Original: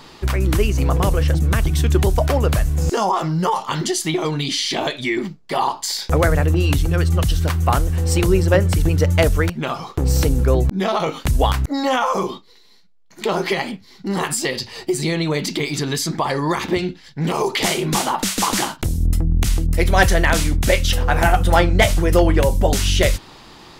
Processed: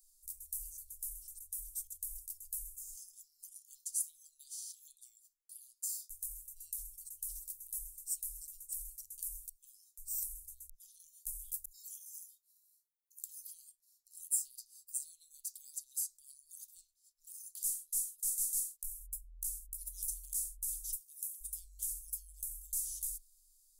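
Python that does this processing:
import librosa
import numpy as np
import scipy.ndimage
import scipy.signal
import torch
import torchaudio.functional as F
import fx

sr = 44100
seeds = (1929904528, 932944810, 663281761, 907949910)

y = fx.high_shelf(x, sr, hz=7800.0, db=8.0, at=(11.52, 13.47))
y = fx.highpass(y, sr, hz=140.0, slope=24, at=(20.9, 21.4))
y = scipy.signal.sosfilt(scipy.signal.cheby2(4, 80, [120.0, 1800.0], 'bandstop', fs=sr, output='sos'), y)
y = fx.tone_stack(y, sr, knobs='5-5-5')
y = y * librosa.db_to_amplitude(1.5)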